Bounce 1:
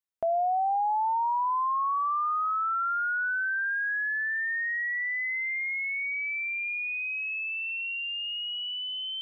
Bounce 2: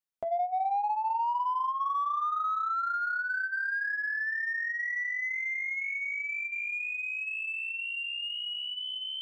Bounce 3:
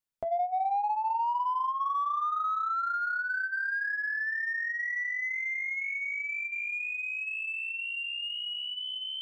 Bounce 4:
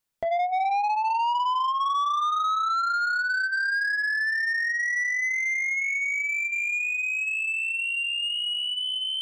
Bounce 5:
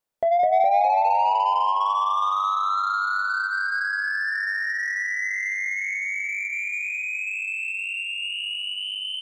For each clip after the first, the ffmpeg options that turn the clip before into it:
ffmpeg -i in.wav -filter_complex "[0:a]flanger=delay=6.1:depth=3.8:regen=-38:speed=2:shape=sinusoidal,asplit=2[link_01][link_02];[link_02]asoftclip=type=tanh:threshold=-33.5dB,volume=-11.5dB[link_03];[link_01][link_03]amix=inputs=2:normalize=0" out.wav
ffmpeg -i in.wav -af "lowshelf=frequency=150:gain=8.5" out.wav
ffmpeg -i in.wav -af "asoftclip=type=tanh:threshold=-30dB,volume=8.5dB" out.wav
ffmpeg -i in.wav -filter_complex "[0:a]equalizer=frequency=590:width=0.79:gain=10.5,asplit=2[link_01][link_02];[link_02]asplit=7[link_03][link_04][link_05][link_06][link_07][link_08][link_09];[link_03]adelay=206,afreqshift=-42,volume=-3.5dB[link_10];[link_04]adelay=412,afreqshift=-84,volume=-9.5dB[link_11];[link_05]adelay=618,afreqshift=-126,volume=-15.5dB[link_12];[link_06]adelay=824,afreqshift=-168,volume=-21.6dB[link_13];[link_07]adelay=1030,afreqshift=-210,volume=-27.6dB[link_14];[link_08]adelay=1236,afreqshift=-252,volume=-33.6dB[link_15];[link_09]adelay=1442,afreqshift=-294,volume=-39.6dB[link_16];[link_10][link_11][link_12][link_13][link_14][link_15][link_16]amix=inputs=7:normalize=0[link_17];[link_01][link_17]amix=inputs=2:normalize=0,volume=-4.5dB" out.wav

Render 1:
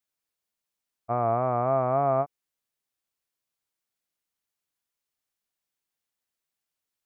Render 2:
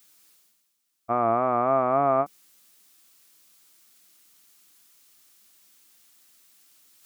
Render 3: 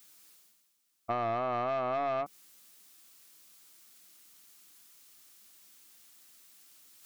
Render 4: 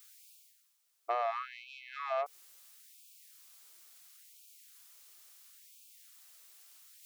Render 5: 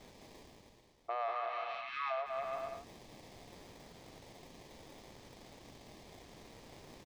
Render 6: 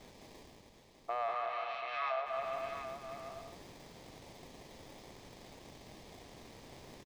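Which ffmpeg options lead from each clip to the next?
ffmpeg -i in.wav -af "highshelf=frequency=2200:gain=12,areverse,acompressor=mode=upward:threshold=-43dB:ratio=2.5,areverse,equalizer=frequency=125:width_type=o:width=0.33:gain=-9,equalizer=frequency=200:width_type=o:width=0.33:gain=9,equalizer=frequency=315:width_type=o:width=0.33:gain=9,equalizer=frequency=1250:width_type=o:width=0.33:gain=4" out.wav
ffmpeg -i in.wav -af "asoftclip=type=tanh:threshold=-20dB,acompressor=threshold=-29dB:ratio=6" out.wav
ffmpeg -i in.wav -af "afftfilt=real='re*gte(b*sr/1024,330*pow(2300/330,0.5+0.5*sin(2*PI*0.73*pts/sr)))':imag='im*gte(b*sr/1024,330*pow(2300/330,0.5+0.5*sin(2*PI*0.73*pts/sr)))':win_size=1024:overlap=0.75" out.wav
ffmpeg -i in.wav -filter_complex "[0:a]aecho=1:1:190|332.5|439.4|519.5|579.6:0.631|0.398|0.251|0.158|0.1,acrossover=split=1100|2800|5900[link_01][link_02][link_03][link_04];[link_04]acrusher=samples=31:mix=1:aa=0.000001[link_05];[link_01][link_02][link_03][link_05]amix=inputs=4:normalize=0,alimiter=level_in=6.5dB:limit=-24dB:level=0:latency=1:release=496,volume=-6.5dB,volume=2dB" out.wav
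ffmpeg -i in.wav -af "aecho=1:1:734:0.376,volume=1dB" out.wav

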